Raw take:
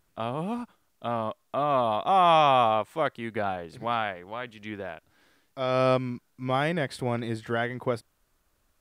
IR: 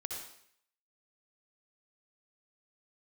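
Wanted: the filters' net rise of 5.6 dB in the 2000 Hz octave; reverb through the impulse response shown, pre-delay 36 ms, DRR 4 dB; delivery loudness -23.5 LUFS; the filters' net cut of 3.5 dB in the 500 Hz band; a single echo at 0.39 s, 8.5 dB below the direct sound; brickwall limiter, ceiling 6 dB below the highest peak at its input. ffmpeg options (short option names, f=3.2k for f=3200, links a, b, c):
-filter_complex "[0:a]equalizer=f=500:t=o:g=-5.5,equalizer=f=2k:t=o:g=7.5,alimiter=limit=-15dB:level=0:latency=1,aecho=1:1:390:0.376,asplit=2[a][b];[1:a]atrim=start_sample=2205,adelay=36[c];[b][c]afir=irnorm=-1:irlink=0,volume=-4dB[d];[a][d]amix=inputs=2:normalize=0,volume=4dB"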